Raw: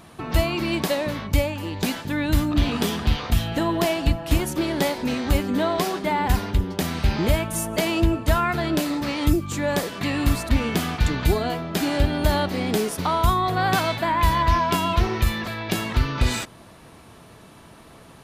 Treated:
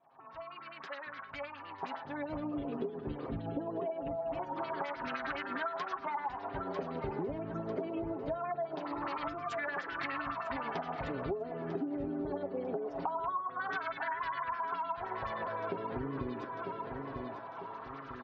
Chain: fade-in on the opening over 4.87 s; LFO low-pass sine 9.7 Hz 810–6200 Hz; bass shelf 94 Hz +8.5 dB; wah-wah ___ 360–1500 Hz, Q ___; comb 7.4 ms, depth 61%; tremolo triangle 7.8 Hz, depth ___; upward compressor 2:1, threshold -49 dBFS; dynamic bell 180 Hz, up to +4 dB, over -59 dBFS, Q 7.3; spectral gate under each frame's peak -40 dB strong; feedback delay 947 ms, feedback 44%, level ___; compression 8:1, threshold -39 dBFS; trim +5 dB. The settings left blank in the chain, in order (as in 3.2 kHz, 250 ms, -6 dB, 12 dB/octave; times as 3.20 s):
0.23 Hz, 2.8, 30%, -14 dB